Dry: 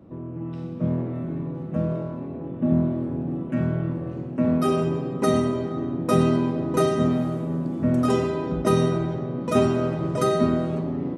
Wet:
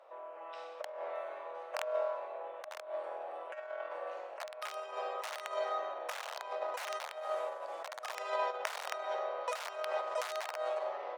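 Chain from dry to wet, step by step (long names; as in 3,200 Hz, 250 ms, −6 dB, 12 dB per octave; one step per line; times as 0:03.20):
wrap-around overflow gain 13.5 dB
compressor whose output falls as the input rises −27 dBFS, ratio −0.5
Butterworth high-pass 560 Hz 48 dB per octave
high-shelf EQ 9,800 Hz −11 dB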